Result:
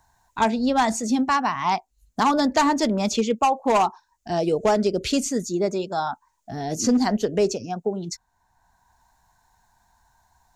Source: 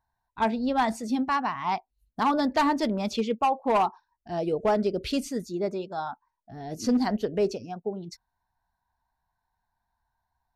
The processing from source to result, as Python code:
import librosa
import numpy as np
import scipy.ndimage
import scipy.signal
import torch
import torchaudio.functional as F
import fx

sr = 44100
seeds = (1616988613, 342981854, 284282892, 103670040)

y = fx.peak_eq(x, sr, hz=6900.0, db=13.5, octaves=0.58)
y = fx.band_squash(y, sr, depth_pct=40)
y = F.gain(torch.from_numpy(y), 4.5).numpy()